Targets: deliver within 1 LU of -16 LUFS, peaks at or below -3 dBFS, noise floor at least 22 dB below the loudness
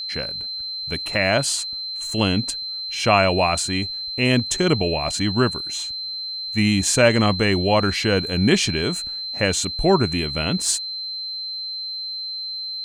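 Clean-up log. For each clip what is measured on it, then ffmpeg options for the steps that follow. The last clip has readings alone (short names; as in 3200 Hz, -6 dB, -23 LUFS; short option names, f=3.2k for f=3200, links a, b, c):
steady tone 4100 Hz; tone level -27 dBFS; loudness -21.0 LUFS; peak -3.0 dBFS; loudness target -16.0 LUFS
-> -af "bandreject=f=4.1k:w=30"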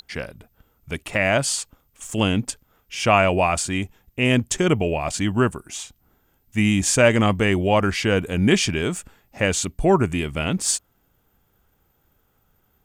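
steady tone none; loudness -21.0 LUFS; peak -3.5 dBFS; loudness target -16.0 LUFS
-> -af "volume=5dB,alimiter=limit=-3dB:level=0:latency=1"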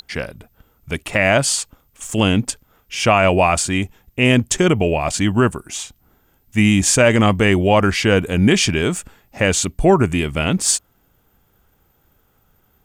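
loudness -16.5 LUFS; peak -3.0 dBFS; noise floor -61 dBFS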